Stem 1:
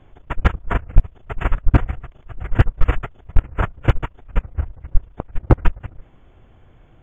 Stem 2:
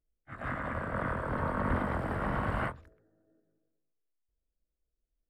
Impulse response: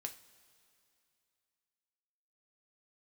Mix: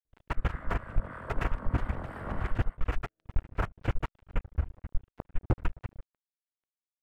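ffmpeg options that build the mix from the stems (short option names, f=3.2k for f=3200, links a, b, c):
-filter_complex "[0:a]adynamicequalizer=threshold=0.0224:dfrequency=120:dqfactor=3.1:tfrequency=120:tqfactor=3.1:attack=5:release=100:ratio=0.375:range=2:mode=cutabove:tftype=bell,alimiter=limit=-8dB:level=0:latency=1:release=37,aeval=exprs='sgn(val(0))*max(abs(val(0))-0.0133,0)':c=same,volume=-2dB[a];[1:a]acrossover=split=1000[b][c];[b]aeval=exprs='val(0)*(1-0.5/2+0.5/2*cos(2*PI*3.1*n/s))':c=same[d];[c]aeval=exprs='val(0)*(1-0.5/2-0.5/2*cos(2*PI*3.1*n/s))':c=same[e];[d][e]amix=inputs=2:normalize=0,adelay=50,volume=-3dB,afade=t=out:st=2.3:d=0.4:silence=0.298538[f];[a][f]amix=inputs=2:normalize=0,alimiter=limit=-18dB:level=0:latency=1:release=360"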